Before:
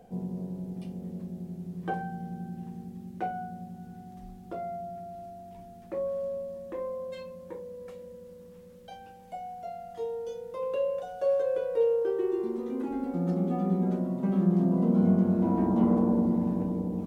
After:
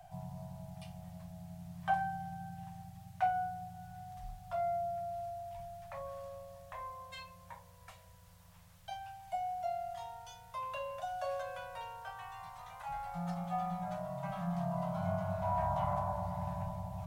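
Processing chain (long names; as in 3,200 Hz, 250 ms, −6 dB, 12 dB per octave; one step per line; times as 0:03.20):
Chebyshev band-stop filter 160–620 Hz, order 5
level +3 dB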